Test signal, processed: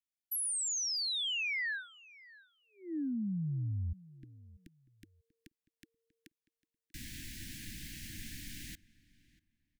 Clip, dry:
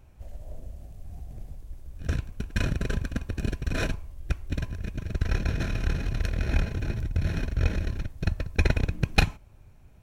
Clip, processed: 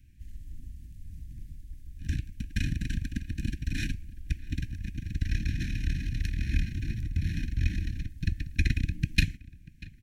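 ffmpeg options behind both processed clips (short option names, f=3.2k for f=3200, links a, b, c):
-filter_complex "[0:a]asuperstop=centerf=730:order=20:qfactor=0.56,asplit=2[a][b];[b]adelay=640,lowpass=f=2.8k:p=1,volume=-20dB,asplit=2[c][d];[d]adelay=640,lowpass=f=2.8k:p=1,volume=0.22[e];[c][e]amix=inputs=2:normalize=0[f];[a][f]amix=inputs=2:normalize=0,volume=-2.5dB"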